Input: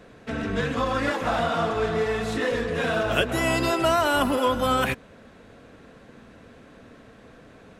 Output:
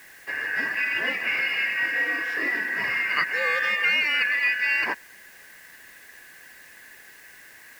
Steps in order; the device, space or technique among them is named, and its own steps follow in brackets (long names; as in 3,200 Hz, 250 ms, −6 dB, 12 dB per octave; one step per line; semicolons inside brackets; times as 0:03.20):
split-band scrambled radio (band-splitting scrambler in four parts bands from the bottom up 2143; band-pass filter 340–3,100 Hz; white noise bed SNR 26 dB)